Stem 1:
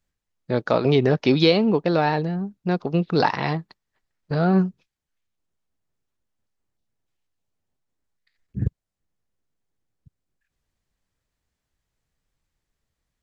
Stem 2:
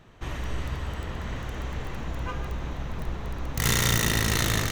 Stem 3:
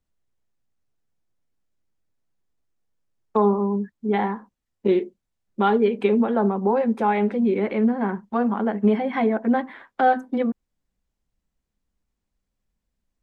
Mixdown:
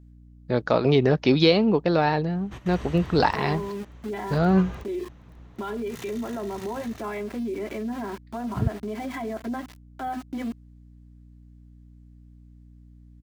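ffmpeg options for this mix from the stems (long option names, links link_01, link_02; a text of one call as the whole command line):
ffmpeg -i stem1.wav -i stem2.wav -i stem3.wav -filter_complex "[0:a]aeval=exprs='val(0)+0.00447*(sin(2*PI*60*n/s)+sin(2*PI*2*60*n/s)/2+sin(2*PI*3*60*n/s)/3+sin(2*PI*4*60*n/s)/4+sin(2*PI*5*60*n/s)/5)':channel_layout=same,volume=-1dB,asplit=2[link_01][link_02];[1:a]adelay=2300,volume=-3.5dB[link_03];[2:a]aecho=1:1:3:0.77,alimiter=limit=-12.5dB:level=0:latency=1,aeval=exprs='val(0)*gte(abs(val(0)),0.0237)':channel_layout=same,volume=-4.5dB[link_04];[link_02]apad=whole_len=309411[link_05];[link_03][link_05]sidechaingate=range=-15dB:threshold=-40dB:ratio=16:detection=peak[link_06];[link_06][link_04]amix=inputs=2:normalize=0,highpass=53,alimiter=level_in=0.5dB:limit=-24dB:level=0:latency=1:release=72,volume=-0.5dB,volume=0dB[link_07];[link_01][link_07]amix=inputs=2:normalize=0" out.wav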